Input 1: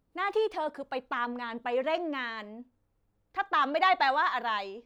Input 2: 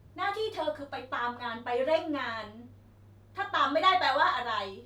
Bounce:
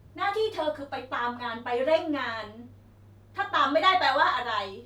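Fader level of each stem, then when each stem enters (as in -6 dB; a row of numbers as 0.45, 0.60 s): -7.5, +2.5 dB; 0.00, 0.00 s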